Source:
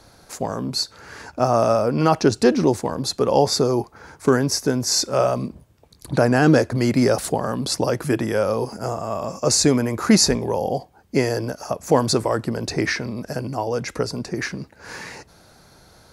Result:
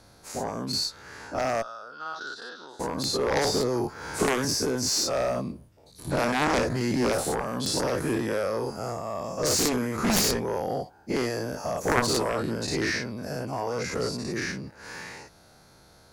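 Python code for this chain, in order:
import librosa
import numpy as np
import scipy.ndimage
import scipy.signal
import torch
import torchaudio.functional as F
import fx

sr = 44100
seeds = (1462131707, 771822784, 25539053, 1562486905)

y = fx.spec_dilate(x, sr, span_ms=120)
y = fx.double_bandpass(y, sr, hz=2300.0, octaves=1.3, at=(1.61, 2.79), fade=0.02)
y = fx.cheby_harmonics(y, sr, harmonics=(3, 6), levels_db=(-7, -36), full_scale_db=5.0)
y = fx.band_squash(y, sr, depth_pct=100, at=(3.36, 4.45))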